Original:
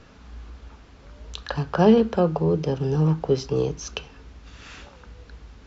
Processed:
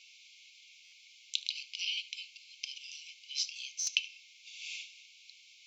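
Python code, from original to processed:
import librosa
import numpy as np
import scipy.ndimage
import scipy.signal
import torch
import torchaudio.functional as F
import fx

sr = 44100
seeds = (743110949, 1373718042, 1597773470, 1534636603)

y = fx.brickwall_highpass(x, sr, low_hz=2100.0)
y = y + 10.0 ** (-19.5 / 20.0) * np.pad(y, (int(75 * sr / 1000.0), 0))[:len(y)]
y = fx.buffer_glitch(y, sr, at_s=(0.84, 3.79), block=512, repeats=6)
y = y * 10.0 ** (4.0 / 20.0)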